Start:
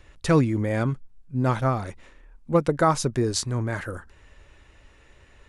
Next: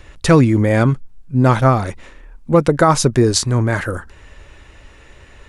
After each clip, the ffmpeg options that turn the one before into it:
-af "alimiter=level_in=3.76:limit=0.891:release=50:level=0:latency=1,volume=0.891"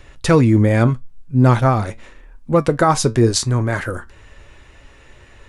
-af "flanger=delay=7:depth=2.4:regen=73:speed=0.82:shape=triangular,volume=1.33"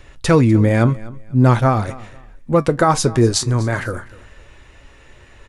-af "aecho=1:1:248|496:0.1|0.025"

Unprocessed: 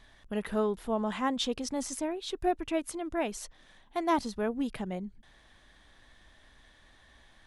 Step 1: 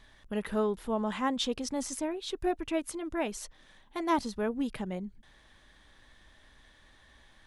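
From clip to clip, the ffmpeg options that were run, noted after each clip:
-af "bandreject=f=700:w=12"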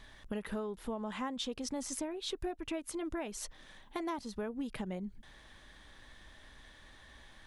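-af "acompressor=threshold=0.0126:ratio=8,volume=1.41"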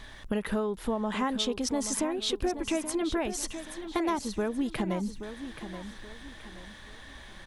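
-af "aecho=1:1:828|1656|2484|3312:0.299|0.107|0.0387|0.0139,volume=2.66"

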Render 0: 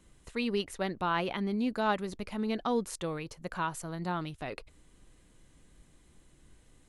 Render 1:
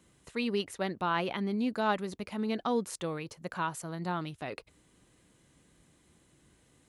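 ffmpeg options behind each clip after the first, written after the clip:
-af "highpass=90"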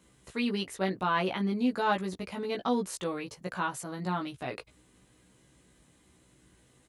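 -filter_complex "[0:a]asplit=2[s0][s1];[s1]adelay=16,volume=0.75[s2];[s0][s2]amix=inputs=2:normalize=0"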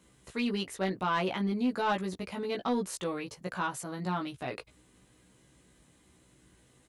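-af "asoftclip=type=tanh:threshold=0.0944"

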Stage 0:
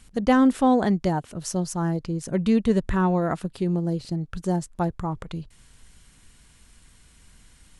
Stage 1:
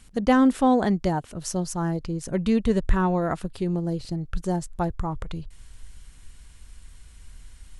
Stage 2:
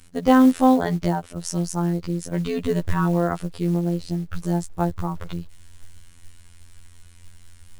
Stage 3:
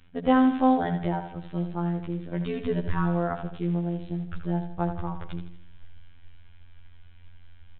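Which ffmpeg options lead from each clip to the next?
-af "asubboost=boost=3.5:cutoff=86"
-af "afftfilt=real='hypot(re,im)*cos(PI*b)':imag='0':win_size=2048:overlap=0.75,acrusher=bits=7:mode=log:mix=0:aa=0.000001,volume=1.68"
-filter_complex "[0:a]asplit=2[s0][s1];[s1]aecho=0:1:80|160|240|320|400:0.355|0.16|0.0718|0.0323|0.0145[s2];[s0][s2]amix=inputs=2:normalize=0,aresample=8000,aresample=44100,volume=0.562"

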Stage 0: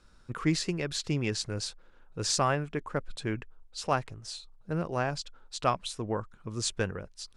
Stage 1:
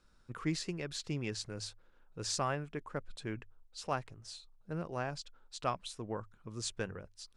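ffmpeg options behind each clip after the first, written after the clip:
-af "bandreject=f=50:t=h:w=6,bandreject=f=100:t=h:w=6,volume=0.422"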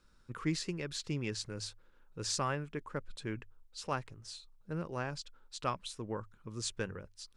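-af "equalizer=f=700:w=4.9:g=-7.5,volume=1.12"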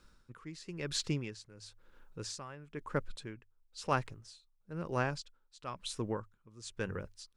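-af "aeval=exprs='val(0)*pow(10,-19*(0.5-0.5*cos(2*PI*1*n/s))/20)':c=same,volume=1.88"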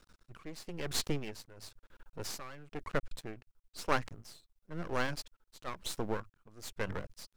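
-af "aeval=exprs='max(val(0),0)':c=same,volume=1.88"

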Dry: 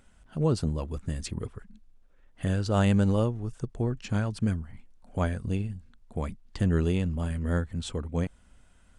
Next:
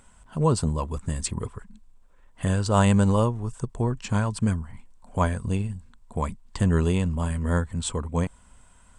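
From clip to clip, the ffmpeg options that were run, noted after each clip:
-af "equalizer=f=315:t=o:w=0.33:g=-4,equalizer=f=1000:t=o:w=0.33:g=11,equalizer=f=8000:t=o:w=0.33:g=11,volume=1.5"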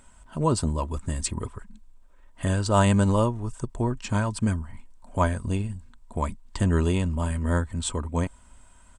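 -af "aecho=1:1:3.2:0.34"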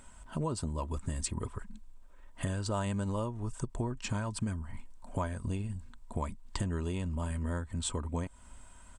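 -af "acompressor=threshold=0.0282:ratio=6"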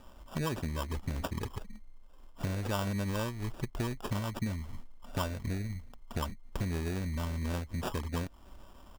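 -af "acrusher=samples=21:mix=1:aa=0.000001"

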